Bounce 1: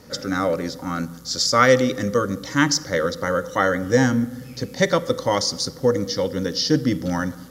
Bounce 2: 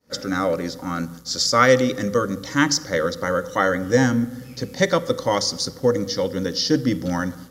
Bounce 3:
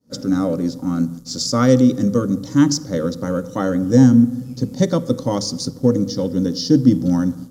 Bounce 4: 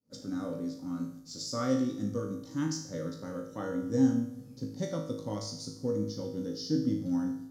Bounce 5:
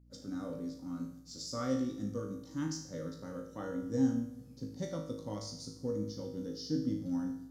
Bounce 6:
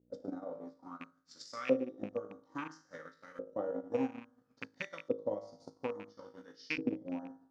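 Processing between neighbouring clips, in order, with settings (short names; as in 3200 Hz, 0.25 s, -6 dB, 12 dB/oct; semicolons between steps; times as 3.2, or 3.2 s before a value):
expander -36 dBFS; notches 50/100/150 Hz
ten-band EQ 125 Hz +9 dB, 250 Hz +11 dB, 2000 Hz -11 dB, 8000 Hz +4 dB; in parallel at -9 dB: backlash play -28 dBFS; on the sum: gain -5.5 dB
resonator 53 Hz, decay 0.63 s, harmonics all, mix 90%; gain -6 dB
hum 60 Hz, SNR 24 dB; gain -4.5 dB
rattling part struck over -36 dBFS, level -34 dBFS; transient shaper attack +11 dB, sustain -7 dB; LFO band-pass saw up 0.59 Hz 440–2300 Hz; gain +5 dB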